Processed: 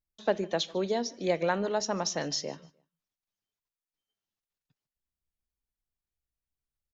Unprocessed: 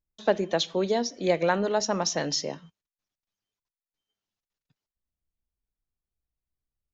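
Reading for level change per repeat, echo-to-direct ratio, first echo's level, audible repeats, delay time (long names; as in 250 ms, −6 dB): −11.5 dB, −23.0 dB, −23.5 dB, 2, 150 ms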